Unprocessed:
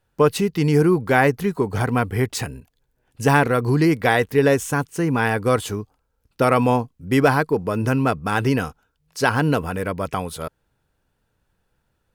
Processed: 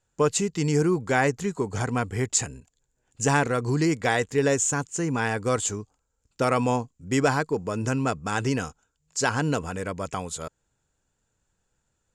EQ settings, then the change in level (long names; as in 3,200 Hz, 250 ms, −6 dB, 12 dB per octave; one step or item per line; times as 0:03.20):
low-pass with resonance 7,200 Hz, resonance Q 11
−6.0 dB